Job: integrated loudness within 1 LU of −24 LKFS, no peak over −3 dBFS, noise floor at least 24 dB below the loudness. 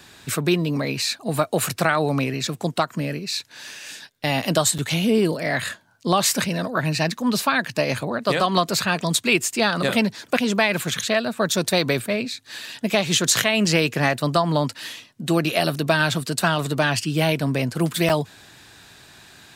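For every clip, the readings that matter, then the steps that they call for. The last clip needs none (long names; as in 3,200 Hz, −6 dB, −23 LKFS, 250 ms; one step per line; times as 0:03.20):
number of dropouts 2; longest dropout 6.7 ms; integrated loudness −21.5 LKFS; sample peak −4.5 dBFS; target loudness −24.0 LKFS
→ repair the gap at 0:04.78/0:18.09, 6.7 ms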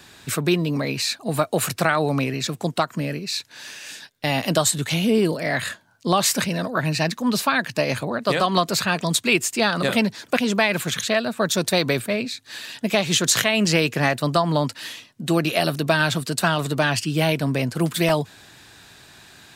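number of dropouts 0; integrated loudness −21.5 LKFS; sample peak −4.5 dBFS; target loudness −24.0 LKFS
→ level −2.5 dB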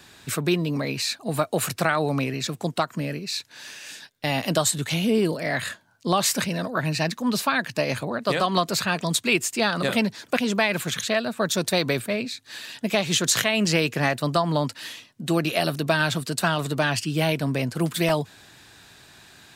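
integrated loudness −24.0 LKFS; sample peak −7.0 dBFS; background noise floor −54 dBFS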